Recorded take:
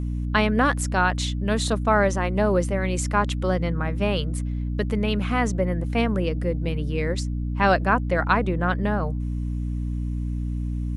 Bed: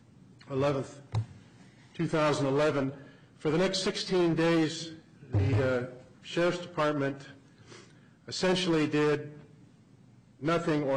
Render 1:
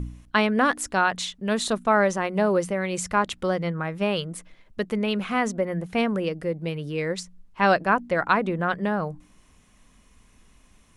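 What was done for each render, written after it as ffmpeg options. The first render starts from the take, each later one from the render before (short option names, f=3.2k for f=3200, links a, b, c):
-af "bandreject=f=60:t=h:w=4,bandreject=f=120:t=h:w=4,bandreject=f=180:t=h:w=4,bandreject=f=240:t=h:w=4,bandreject=f=300:t=h:w=4"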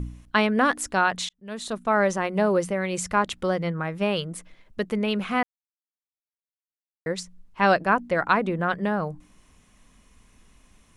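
-filter_complex "[0:a]asplit=4[a][b][c][d];[a]atrim=end=1.29,asetpts=PTS-STARTPTS,afade=t=out:st=1.286:d=0.004:c=hsin[e];[b]atrim=start=1.29:end=5.43,asetpts=PTS-STARTPTS,afade=t=in:d=0.81,afade=t=out:st=4.136:d=0.004:c=hsin[f];[c]atrim=start=5.43:end=7.06,asetpts=PTS-STARTPTS,volume=0[g];[d]atrim=start=7.06,asetpts=PTS-STARTPTS,afade=t=in:d=0.004:c=hsin[h];[e][f][g][h]concat=n=4:v=0:a=1"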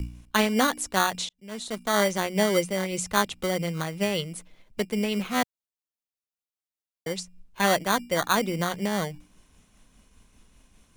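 -filter_complex "[0:a]acrossover=split=150|1700[a][b][c];[b]acrusher=samples=17:mix=1:aa=0.000001[d];[a][d][c]amix=inputs=3:normalize=0,tremolo=f=5:d=0.31"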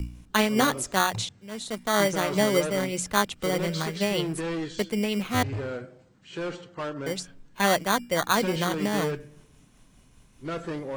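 -filter_complex "[1:a]volume=-5dB[a];[0:a][a]amix=inputs=2:normalize=0"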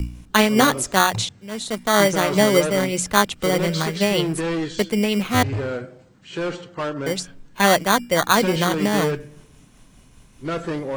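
-af "volume=6.5dB"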